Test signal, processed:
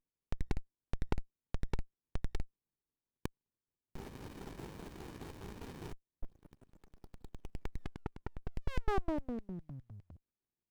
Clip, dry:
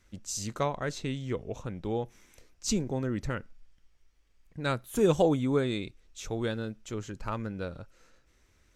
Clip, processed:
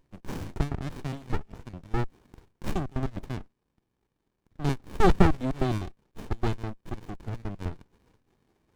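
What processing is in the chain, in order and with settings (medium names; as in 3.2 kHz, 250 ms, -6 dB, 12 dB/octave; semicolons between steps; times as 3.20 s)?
bass shelf 140 Hz +6 dB; LFO high-pass square 4.9 Hz 420–1900 Hz; peaking EQ 1.2 kHz -14 dB 0.81 oct; sliding maximum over 65 samples; trim +6.5 dB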